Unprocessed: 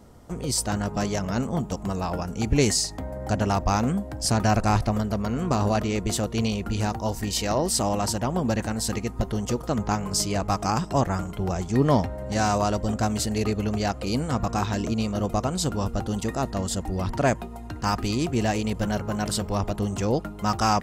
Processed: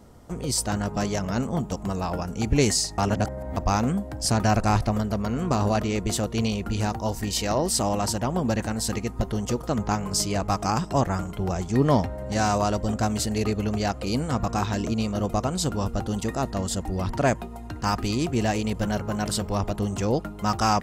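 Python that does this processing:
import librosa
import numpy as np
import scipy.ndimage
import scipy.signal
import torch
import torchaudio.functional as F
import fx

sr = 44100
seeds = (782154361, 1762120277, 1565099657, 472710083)

y = fx.edit(x, sr, fx.reverse_span(start_s=2.98, length_s=0.59), tone=tone)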